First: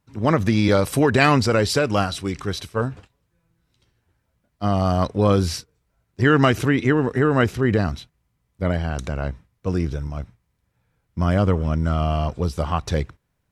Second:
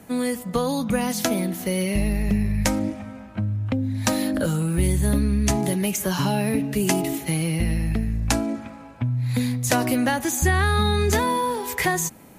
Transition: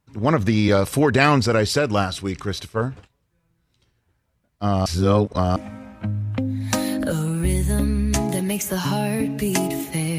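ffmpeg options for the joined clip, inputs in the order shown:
ffmpeg -i cue0.wav -i cue1.wav -filter_complex "[0:a]apad=whole_dur=10.18,atrim=end=10.18,asplit=2[link_01][link_02];[link_01]atrim=end=4.862[link_03];[link_02]atrim=start=4.858:end=5.562,asetpts=PTS-STARTPTS,areverse[link_04];[1:a]atrim=start=2.898:end=7.52[link_05];[link_03][link_04]acrossfade=duration=0.004:curve1=hsin:curve2=hsin[link_06];[link_06][link_05]acrossfade=duration=0.004:curve1=hsin:curve2=hsin" out.wav

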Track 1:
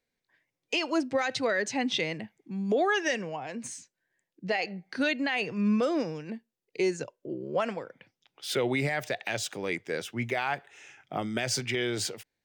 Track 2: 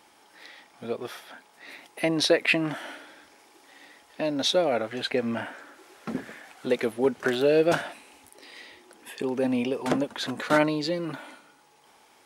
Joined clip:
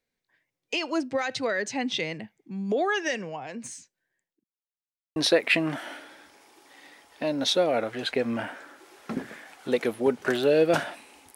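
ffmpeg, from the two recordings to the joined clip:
ffmpeg -i cue0.wav -i cue1.wav -filter_complex "[0:a]apad=whole_dur=11.35,atrim=end=11.35,asplit=2[link_01][link_02];[link_01]atrim=end=4.44,asetpts=PTS-STARTPTS,afade=type=out:start_time=3.93:duration=0.51:curve=qsin[link_03];[link_02]atrim=start=4.44:end=5.16,asetpts=PTS-STARTPTS,volume=0[link_04];[1:a]atrim=start=2.14:end=8.33,asetpts=PTS-STARTPTS,afade=type=in:duration=0.004:curve=hsin[link_05];[link_03][link_04][link_05]concat=n=3:v=0:a=1" out.wav

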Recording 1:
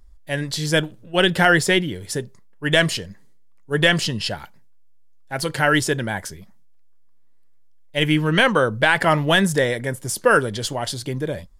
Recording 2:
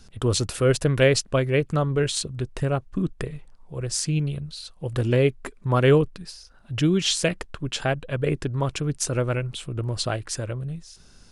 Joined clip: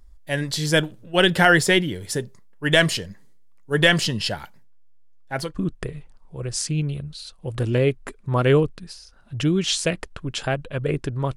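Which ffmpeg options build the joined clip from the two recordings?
ffmpeg -i cue0.wav -i cue1.wav -filter_complex "[0:a]asettb=1/sr,asplit=3[link_01][link_02][link_03];[link_01]atrim=end=4.634[link_04];[link_02]atrim=start=4.63:end=5.54,asetpts=PTS-STARTPTS,afade=type=in:duration=0.004:curve=qsin,afade=type=out:start_time=0.906:duration=0.004:curve=qsin,highshelf=frequency=5300:gain=-8.5[link_05];[link_03]atrim=start=5.536[link_06];[link_04][link_05]acrossfade=duration=0.004:curve1=hsin:curve2=qsin[link_07];[link_07][link_06]acrossfade=duration=0.004:curve1=qsin:curve2=hsin,apad=whole_dur=11.36,atrim=end=11.36,atrim=end=5.54,asetpts=PTS-STARTPTS[link_08];[1:a]atrim=start=2.78:end=8.74,asetpts=PTS-STARTPTS[link_09];[link_08][link_09]acrossfade=duration=0.14:curve1=tri:curve2=tri" out.wav

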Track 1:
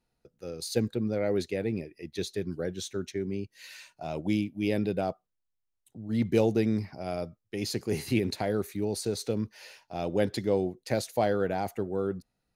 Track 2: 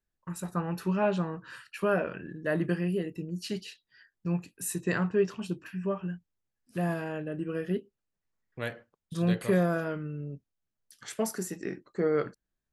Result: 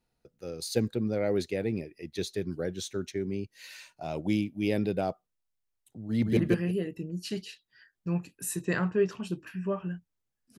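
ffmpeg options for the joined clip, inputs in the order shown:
ffmpeg -i cue0.wav -i cue1.wav -filter_complex "[0:a]apad=whole_dur=10.58,atrim=end=10.58,atrim=end=6.372[link_01];[1:a]atrim=start=2.558:end=6.77[link_02];[link_01][link_02]acrossfade=duration=0.004:curve1=hsin:curve2=hsin,asplit=2[link_03][link_04];[link_04]afade=type=in:start_time=6.05:duration=0.01,afade=type=out:start_time=6.37:duration=0.01,aecho=0:1:170|340|510:0.794328|0.158866|0.0317731[link_05];[link_03][link_05]amix=inputs=2:normalize=0" out.wav

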